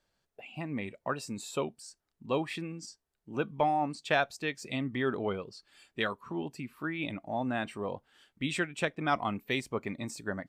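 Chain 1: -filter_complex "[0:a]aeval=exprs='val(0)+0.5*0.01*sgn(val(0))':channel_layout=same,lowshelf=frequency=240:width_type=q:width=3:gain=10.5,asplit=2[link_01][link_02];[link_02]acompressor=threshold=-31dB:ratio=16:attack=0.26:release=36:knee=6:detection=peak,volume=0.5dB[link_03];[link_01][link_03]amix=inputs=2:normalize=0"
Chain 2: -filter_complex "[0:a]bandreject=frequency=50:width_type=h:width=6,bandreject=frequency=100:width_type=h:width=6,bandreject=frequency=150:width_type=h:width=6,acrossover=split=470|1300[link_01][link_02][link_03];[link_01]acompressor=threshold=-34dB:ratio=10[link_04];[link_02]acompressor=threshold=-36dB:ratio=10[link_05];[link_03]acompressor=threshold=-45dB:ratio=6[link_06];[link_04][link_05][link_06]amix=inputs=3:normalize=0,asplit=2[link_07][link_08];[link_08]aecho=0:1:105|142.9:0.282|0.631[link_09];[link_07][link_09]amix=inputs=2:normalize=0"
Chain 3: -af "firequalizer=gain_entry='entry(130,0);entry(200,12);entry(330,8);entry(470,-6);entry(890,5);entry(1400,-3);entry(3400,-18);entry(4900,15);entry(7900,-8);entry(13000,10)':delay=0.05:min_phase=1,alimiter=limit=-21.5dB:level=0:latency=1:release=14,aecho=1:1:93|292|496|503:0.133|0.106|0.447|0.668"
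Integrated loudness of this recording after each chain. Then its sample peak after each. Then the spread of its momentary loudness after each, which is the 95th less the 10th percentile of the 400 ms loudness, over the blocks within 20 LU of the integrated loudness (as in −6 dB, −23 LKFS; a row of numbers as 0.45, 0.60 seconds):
−25.0, −37.0, −30.0 LKFS; −9.5, −20.0, −15.0 dBFS; 9, 9, 6 LU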